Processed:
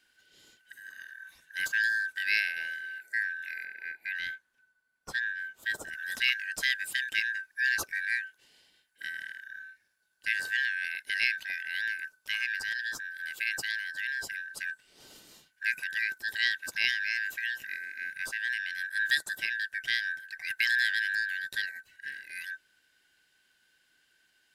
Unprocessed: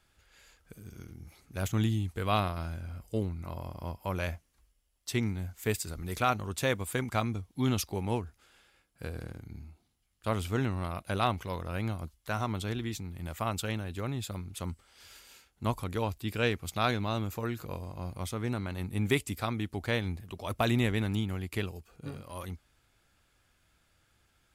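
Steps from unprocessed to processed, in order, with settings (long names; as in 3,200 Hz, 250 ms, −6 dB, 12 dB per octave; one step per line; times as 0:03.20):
band-splitting scrambler in four parts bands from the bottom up 4123
0:03.64–0:05.93: high-shelf EQ 3,300 Hz −10.5 dB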